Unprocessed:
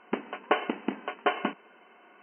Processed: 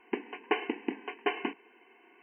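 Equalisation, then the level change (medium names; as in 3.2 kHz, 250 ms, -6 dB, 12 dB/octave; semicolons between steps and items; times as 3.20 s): peaking EQ 880 Hz -6 dB 1.4 oct; static phaser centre 880 Hz, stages 8; +1.5 dB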